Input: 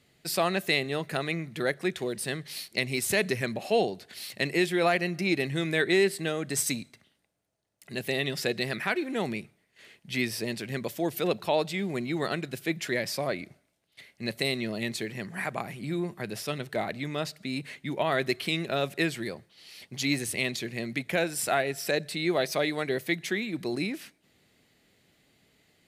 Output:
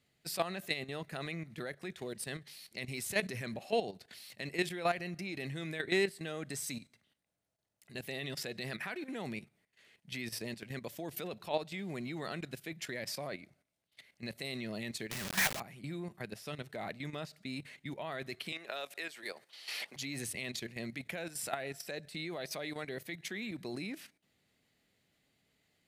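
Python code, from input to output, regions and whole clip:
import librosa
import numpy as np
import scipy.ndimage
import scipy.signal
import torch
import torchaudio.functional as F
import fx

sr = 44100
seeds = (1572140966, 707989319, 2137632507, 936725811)

y = fx.chain(x, sr, fx.lowpass(hz=3000.0, slope=12),
    fx.quant_companded(bits=2),
    fx.high_shelf(hz=2100.0, db=10.0), at=(15.11, 15.6))
y = fx.chain(y, sr, fx.highpass(hz=560.0, slope=12),
    fx.band_squash(depth_pct=100), at=(18.52, 19.96))
y = fx.peak_eq(y, sr, hz=370.0, db=-3.0, octaves=0.7)
y = fx.level_steps(y, sr, step_db=12)
y = y * librosa.db_to_amplitude(-4.0)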